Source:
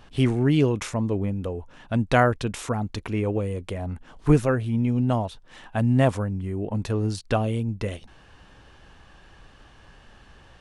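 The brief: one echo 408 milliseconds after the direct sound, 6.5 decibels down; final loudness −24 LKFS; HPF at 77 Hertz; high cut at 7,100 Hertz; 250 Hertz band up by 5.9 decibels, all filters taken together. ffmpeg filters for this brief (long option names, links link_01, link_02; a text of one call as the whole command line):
ffmpeg -i in.wav -af "highpass=77,lowpass=7100,equalizer=frequency=250:width_type=o:gain=7,aecho=1:1:408:0.473,volume=-3dB" out.wav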